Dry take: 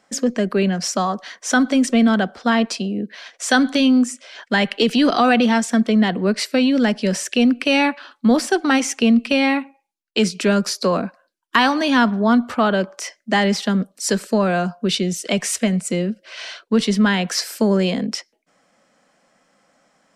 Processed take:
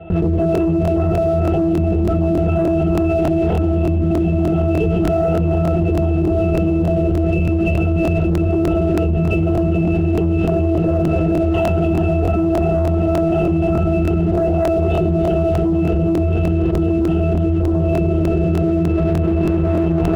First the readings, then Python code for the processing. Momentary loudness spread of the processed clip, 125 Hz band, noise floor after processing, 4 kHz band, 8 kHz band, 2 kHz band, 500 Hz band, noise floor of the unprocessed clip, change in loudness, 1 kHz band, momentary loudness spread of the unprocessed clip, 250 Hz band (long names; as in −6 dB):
1 LU, +13.0 dB, −17 dBFS, below −15 dB, below −15 dB, −10.0 dB, +4.5 dB, −67 dBFS, +1.5 dB, −3.0 dB, 8 LU, +1.0 dB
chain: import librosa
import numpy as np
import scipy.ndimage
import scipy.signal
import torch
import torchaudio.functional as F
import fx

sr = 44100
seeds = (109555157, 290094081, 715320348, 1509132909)

p1 = fx.lower_of_two(x, sr, delay_ms=0.31)
p2 = p1 + fx.echo_heads(p1, sr, ms=143, heads='all three', feedback_pct=68, wet_db=-12.0, dry=0)
p3 = fx.rider(p2, sr, range_db=3, speed_s=0.5)
p4 = fx.peak_eq(p3, sr, hz=490.0, db=13.0, octaves=1.1)
p5 = fx.lpc_vocoder(p4, sr, seeds[0], excitation='whisper', order=16)
p6 = fx.octave_resonator(p5, sr, note='E', decay_s=0.38)
p7 = p6 + 10.0 ** (-10.5 / 20.0) * np.pad(p6, (int(94 * sr / 1000.0), 0))[:len(p6)]
p8 = fx.leveller(p7, sr, passes=1)
p9 = fx.buffer_crackle(p8, sr, first_s=0.53, period_s=0.3, block=1024, kind='repeat')
y = fx.env_flatten(p9, sr, amount_pct=100)